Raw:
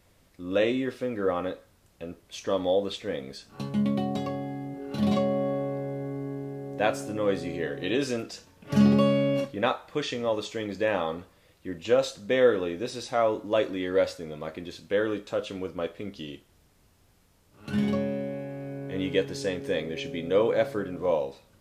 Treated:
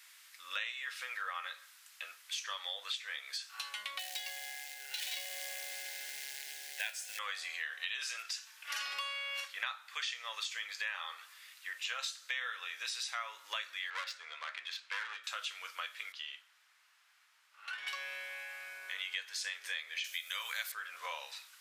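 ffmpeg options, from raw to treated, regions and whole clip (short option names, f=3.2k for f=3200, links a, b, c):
-filter_complex "[0:a]asettb=1/sr,asplit=3[a][b][c];[a]atrim=end=3.994[d];[b]atrim=start=3.99:end=7.19,asetpts=PTS-STARTPTS,afade=t=in:d=0.004:c=qsin,afade=t=out:st=3.196:d=0.004:c=qsin,asubboost=boost=3.5:cutoff=230,acrusher=bits=5:mode=log:mix=0:aa=0.000001,asuperstop=centerf=1200:order=4:qfactor=1.8[e];[c]atrim=start=7.186[f];[d][e]acrossfade=d=0.004:c1=hsin:c2=qsin[g];[g][f]acrossfade=d=0.004:c1=qsin:c2=hsin,asettb=1/sr,asplit=3[h][i][j];[h]atrim=end=13.904[k];[i]atrim=start=13.9:end=15.24,asetpts=PTS-STARTPTS,afade=t=in:d=0.004:c=qsin,afade=t=out:st=1.336:d=0.004:c=qsin,aeval=exprs='clip(val(0),-1,0.0376)':c=same,adynamicsmooth=sensitivity=7.5:basefreq=3.2k[l];[j]atrim=start=15.236[m];[k][l]acrossfade=d=0.004:c1=hsin:c2=qsin[n];[n][m]acrossfade=d=0.004:c1=qsin:c2=hsin,asettb=1/sr,asplit=3[o][p][q];[o]atrim=end=16.124[r];[p]atrim=start=16.12:end=17.87,asetpts=PTS-STARTPTS,afade=t=in:d=0.004:c=qsin,afade=t=out:st=1.746:d=0.004:c=qsin,lowpass=f=1.4k:p=1,acompressor=threshold=-29dB:ratio=2.5:attack=3.2:release=140:knee=1:detection=peak[s];[q]atrim=start=17.866[t];[r][s]acrossfade=d=0.004:c1=hsin:c2=qsin[u];[u][t]acrossfade=d=0.004:c1=qsin:c2=hsin,asettb=1/sr,asplit=3[v][w][x];[v]atrim=end=20.044[y];[w]atrim=start=20.04:end=20.72,asetpts=PTS-STARTPTS,afade=t=in:d=0.004:c=qsin,afade=t=out:st=0.676:d=0.004:c=qsin,highpass=f=480:w=0.5412,highpass=f=480:w=1.3066,aemphasis=mode=production:type=riaa[z];[x]atrim=start=20.716[aa];[y][z]acrossfade=d=0.004:c1=hsin:c2=qsin[ab];[ab][aa]acrossfade=d=0.004:c1=qsin:c2=hsin,highpass=f=1.4k:w=0.5412,highpass=f=1.4k:w=1.3066,acompressor=threshold=-48dB:ratio=4,volume=10dB"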